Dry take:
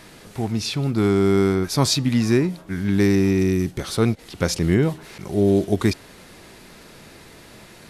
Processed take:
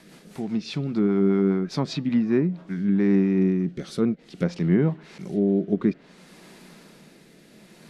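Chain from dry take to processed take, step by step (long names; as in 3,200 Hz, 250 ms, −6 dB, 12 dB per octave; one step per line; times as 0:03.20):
rotating-speaker cabinet horn 5 Hz, later 0.6 Hz, at 0:02.19
low shelf with overshoot 130 Hz −9 dB, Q 3
treble cut that deepens with the level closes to 1,900 Hz, closed at −15.5 dBFS
level −4 dB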